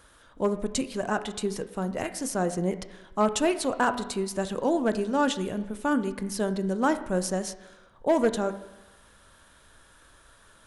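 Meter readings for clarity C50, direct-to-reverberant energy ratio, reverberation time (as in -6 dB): 13.0 dB, 10.5 dB, 1.0 s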